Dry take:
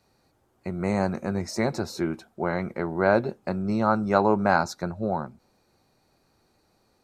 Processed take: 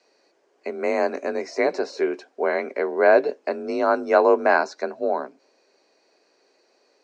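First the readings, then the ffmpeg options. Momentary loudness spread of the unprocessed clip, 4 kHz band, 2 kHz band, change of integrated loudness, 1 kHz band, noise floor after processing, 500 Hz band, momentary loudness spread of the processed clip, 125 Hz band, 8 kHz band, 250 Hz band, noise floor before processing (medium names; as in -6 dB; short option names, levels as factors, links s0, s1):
9 LU, 0.0 dB, +5.0 dB, +3.5 dB, +2.0 dB, -65 dBFS, +6.5 dB, 12 LU, under -20 dB, no reading, -3.5 dB, -68 dBFS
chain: -filter_complex "[0:a]afreqshift=40,acrossover=split=3100[s0][s1];[s1]acompressor=threshold=0.00447:ratio=4:attack=1:release=60[s2];[s0][s2]amix=inputs=2:normalize=0,highpass=f=370:w=0.5412,highpass=f=370:w=1.3066,equalizer=f=860:t=q:w=4:g=-9,equalizer=f=1300:t=q:w=4:g=-9,equalizer=f=3600:t=q:w=4:g=-6,lowpass=f=6300:w=0.5412,lowpass=f=6300:w=1.3066,volume=2.51"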